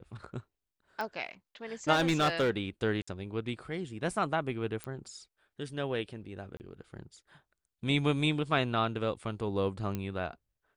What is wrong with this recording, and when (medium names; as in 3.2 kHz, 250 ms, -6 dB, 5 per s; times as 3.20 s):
1.01 s: pop -23 dBFS
1.92–2.51 s: clipped -22.5 dBFS
3.02–3.08 s: dropout 55 ms
4.84 s: pop -22 dBFS
6.57–6.60 s: dropout 29 ms
9.95 s: pop -21 dBFS